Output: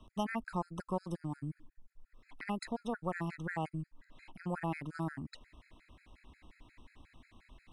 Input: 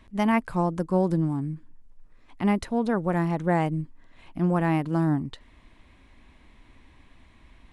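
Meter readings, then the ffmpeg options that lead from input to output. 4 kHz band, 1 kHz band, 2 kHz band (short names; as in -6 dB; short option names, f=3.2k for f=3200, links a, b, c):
-7.5 dB, -11.5 dB, -9.0 dB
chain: -filter_complex "[0:a]acrossover=split=93|770[a][b][c];[a]acompressor=threshold=-46dB:ratio=4[d];[b]acompressor=threshold=-35dB:ratio=4[e];[c]acompressor=threshold=-33dB:ratio=4[f];[d][e][f]amix=inputs=3:normalize=0,afftfilt=real='re*gt(sin(2*PI*5.6*pts/sr)*(1-2*mod(floor(b*sr/1024/1300),2)),0)':imag='im*gt(sin(2*PI*5.6*pts/sr)*(1-2*mod(floor(b*sr/1024/1300),2)),0)':win_size=1024:overlap=0.75,volume=-2dB"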